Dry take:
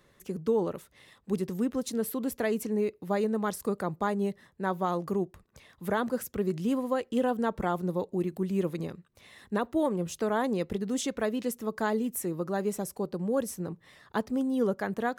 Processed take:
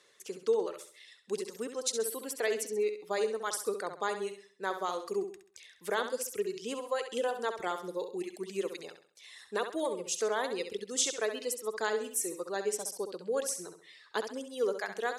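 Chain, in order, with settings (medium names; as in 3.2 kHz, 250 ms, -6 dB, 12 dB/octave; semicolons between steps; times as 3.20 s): frequency weighting ITU-R 468; reverb removal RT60 1.6 s; peaking EQ 430 Hz +12 dB 0.74 oct; flutter echo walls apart 11.4 m, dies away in 0.46 s; trim -4.5 dB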